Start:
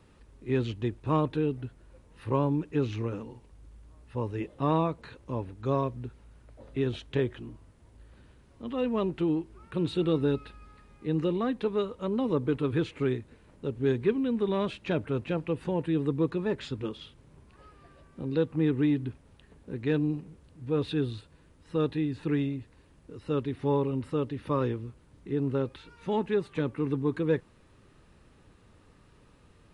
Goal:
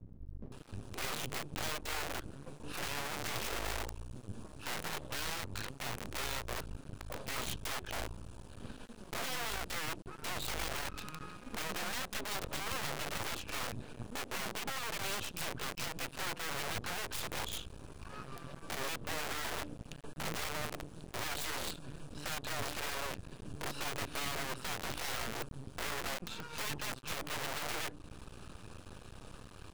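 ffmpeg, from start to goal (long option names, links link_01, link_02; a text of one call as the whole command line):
ffmpeg -i in.wav -filter_complex "[0:a]highshelf=frequency=3500:gain=3.5,bandreject=frequency=147.1:width_type=h:width=4,bandreject=frequency=294.2:width_type=h:width=4,acompressor=threshold=-33dB:ratio=12,asplit=2[link_01][link_02];[link_02]alimiter=level_in=11dB:limit=-24dB:level=0:latency=1:release=414,volume=-11dB,volume=1.5dB[link_03];[link_01][link_03]amix=inputs=2:normalize=0,asuperstop=centerf=2000:order=12:qfactor=3.6,aeval=exprs='(mod(53.1*val(0)+1,2)-1)/53.1':channel_layout=same,acrossover=split=290[link_04][link_05];[link_05]adelay=520[link_06];[link_04][link_06]amix=inputs=2:normalize=0,aeval=exprs='max(val(0),0)':channel_layout=same,volume=5dB" out.wav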